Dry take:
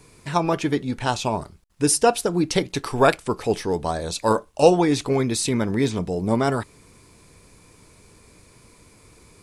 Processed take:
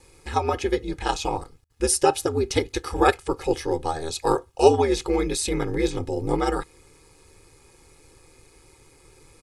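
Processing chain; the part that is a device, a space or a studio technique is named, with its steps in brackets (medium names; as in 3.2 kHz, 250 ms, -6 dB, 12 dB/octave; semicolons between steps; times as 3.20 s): ring-modulated robot voice (ring modulator 78 Hz; comb 2.4 ms, depth 78%); trim -1 dB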